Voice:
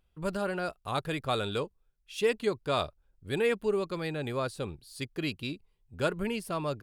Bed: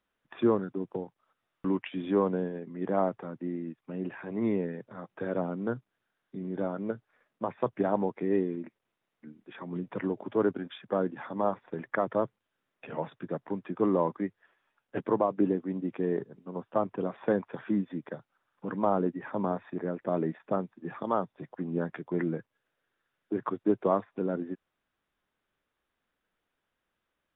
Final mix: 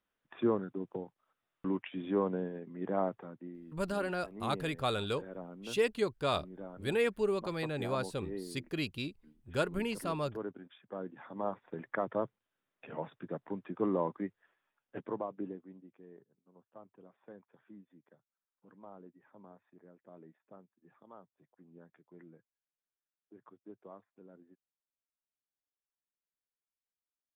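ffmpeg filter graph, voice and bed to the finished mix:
-filter_complex "[0:a]adelay=3550,volume=0.75[s0];[1:a]volume=1.5,afade=t=out:st=3.08:d=0.48:silence=0.354813,afade=t=in:st=10.92:d=0.82:silence=0.375837,afade=t=out:st=14.32:d=1.59:silence=0.1[s1];[s0][s1]amix=inputs=2:normalize=0"

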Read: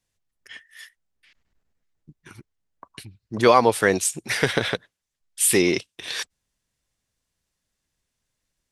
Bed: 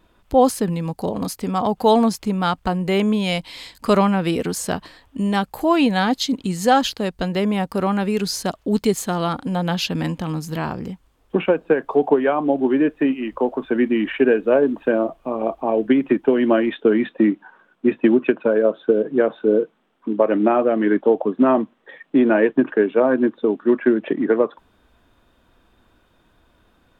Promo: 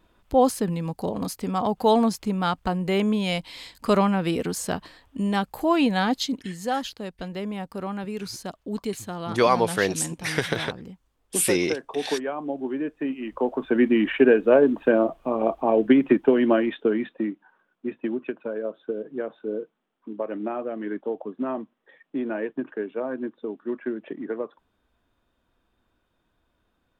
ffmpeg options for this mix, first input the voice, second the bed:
-filter_complex "[0:a]adelay=5950,volume=0.631[s0];[1:a]volume=2.11,afade=t=out:st=6.2:d=0.3:silence=0.446684,afade=t=in:st=12.98:d=0.89:silence=0.298538,afade=t=out:st=16.09:d=1.26:silence=0.237137[s1];[s0][s1]amix=inputs=2:normalize=0"

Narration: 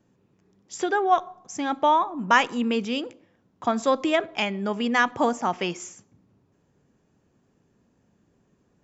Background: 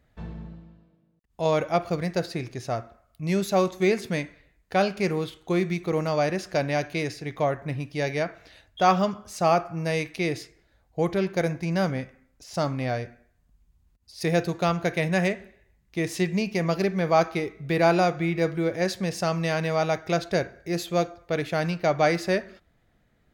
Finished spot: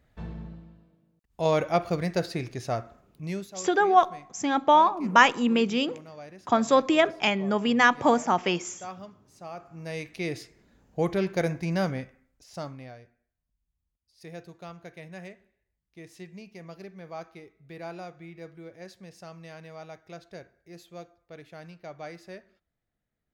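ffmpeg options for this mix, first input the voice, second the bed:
-filter_complex "[0:a]adelay=2850,volume=1.19[s0];[1:a]volume=7.94,afade=t=out:st=2.99:d=0.53:silence=0.105925,afade=t=in:st=9.53:d=1.15:silence=0.11885,afade=t=out:st=11.7:d=1.25:silence=0.133352[s1];[s0][s1]amix=inputs=2:normalize=0"

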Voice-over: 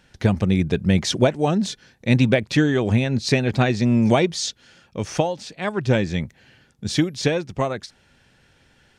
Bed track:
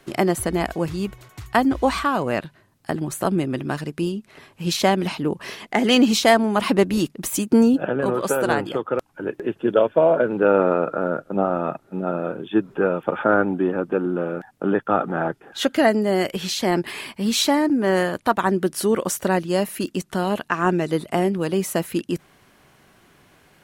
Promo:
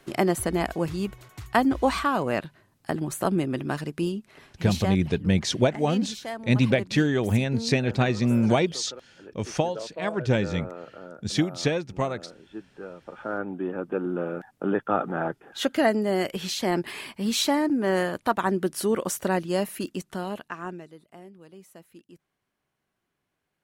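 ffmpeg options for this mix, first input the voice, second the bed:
-filter_complex "[0:a]adelay=4400,volume=0.631[s0];[1:a]volume=3.98,afade=t=out:st=4.12:d=0.96:silence=0.149624,afade=t=in:st=13.07:d=1.13:silence=0.177828,afade=t=out:st=19.64:d=1.3:silence=0.0841395[s1];[s0][s1]amix=inputs=2:normalize=0"

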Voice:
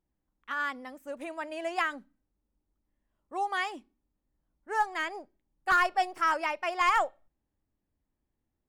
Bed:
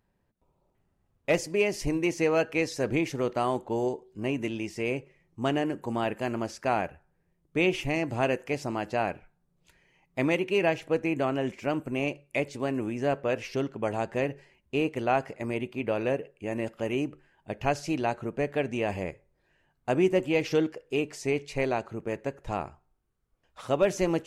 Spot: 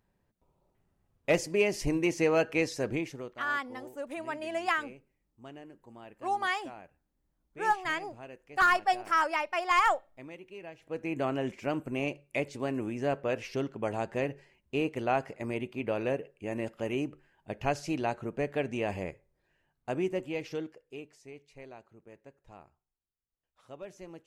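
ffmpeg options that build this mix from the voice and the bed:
-filter_complex "[0:a]adelay=2900,volume=1.06[s0];[1:a]volume=6.68,afade=t=out:st=2.64:d=0.72:silence=0.105925,afade=t=in:st=10.78:d=0.47:silence=0.133352,afade=t=out:st=18.95:d=2.3:silence=0.133352[s1];[s0][s1]amix=inputs=2:normalize=0"

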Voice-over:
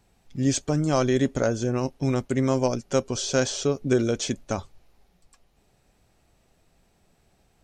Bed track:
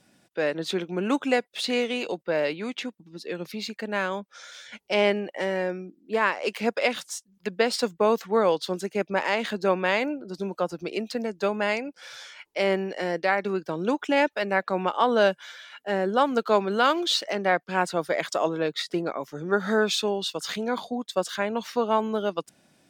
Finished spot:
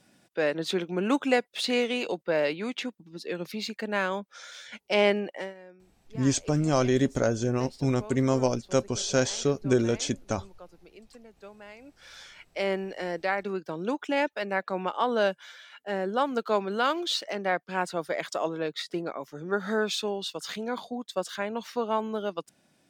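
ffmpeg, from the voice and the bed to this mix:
-filter_complex "[0:a]adelay=5800,volume=0.841[s0];[1:a]volume=6.68,afade=t=out:st=5.27:d=0.27:silence=0.0891251,afade=t=in:st=11.78:d=0.4:silence=0.141254[s1];[s0][s1]amix=inputs=2:normalize=0"

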